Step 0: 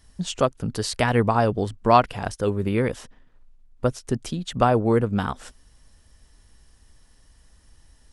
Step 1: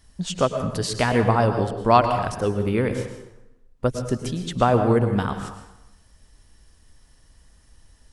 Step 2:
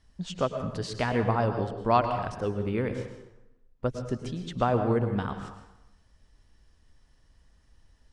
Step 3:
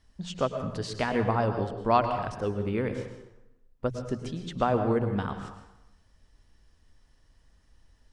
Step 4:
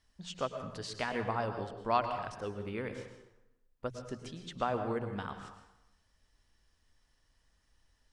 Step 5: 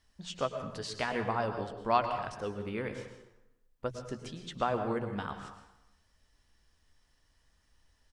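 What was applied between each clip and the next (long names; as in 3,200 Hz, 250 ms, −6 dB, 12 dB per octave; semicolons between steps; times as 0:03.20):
dense smooth reverb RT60 0.92 s, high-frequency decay 0.7×, pre-delay 95 ms, DRR 7 dB
high-frequency loss of the air 79 metres; level −6.5 dB
mains-hum notches 60/120/180 Hz
tilt shelving filter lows −4 dB, about 650 Hz; level −7.5 dB
double-tracking delay 14 ms −13 dB; level +2 dB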